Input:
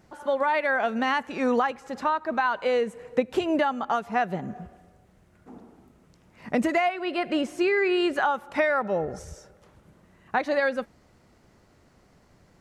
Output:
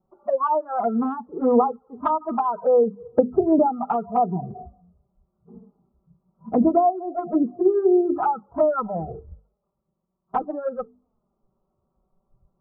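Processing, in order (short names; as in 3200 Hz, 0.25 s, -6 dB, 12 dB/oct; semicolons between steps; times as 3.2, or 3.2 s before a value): 8.82–10.51 G.711 law mismatch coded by A; spectral noise reduction 19 dB; steep low-pass 1300 Hz 96 dB/oct; notches 50/100/150/200/250/300/350/400/450 Hz; envelope flanger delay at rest 5.3 ms, full sweep at -21 dBFS; gain +8.5 dB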